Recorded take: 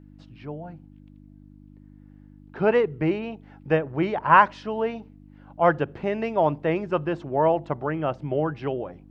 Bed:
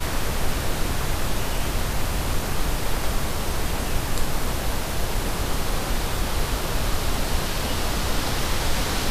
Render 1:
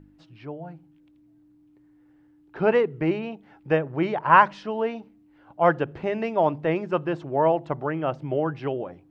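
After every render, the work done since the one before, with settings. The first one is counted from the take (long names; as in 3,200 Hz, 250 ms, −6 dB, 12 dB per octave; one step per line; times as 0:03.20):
hum removal 50 Hz, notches 5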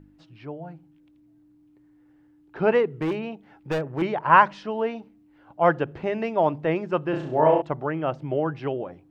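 0:02.90–0:04.02: hard clipping −22 dBFS
0:07.10–0:07.62: flutter between parallel walls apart 5.6 metres, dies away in 0.54 s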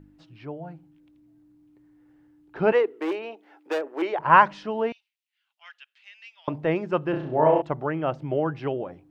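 0:02.72–0:04.19: Butterworth high-pass 300 Hz
0:04.92–0:06.48: four-pole ladder high-pass 2,300 Hz, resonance 30%
0:07.12–0:07.56: high-frequency loss of the air 210 metres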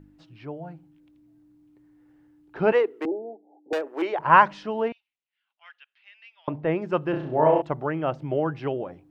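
0:03.05–0:03.73: Butterworth low-pass 830 Hz 96 dB per octave
0:04.88–0:06.82: high-frequency loss of the air 240 metres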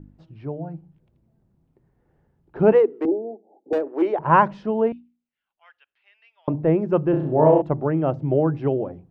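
tilt shelving filter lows +9.5 dB, about 930 Hz
mains-hum notches 60/120/180/240/300 Hz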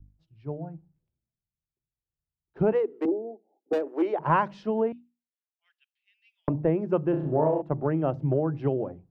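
downward compressor 8 to 1, threshold −22 dBFS, peak gain reduction 12 dB
multiband upward and downward expander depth 100%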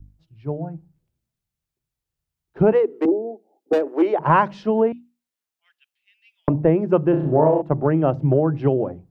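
level +7.5 dB
brickwall limiter −3 dBFS, peak gain reduction 1.5 dB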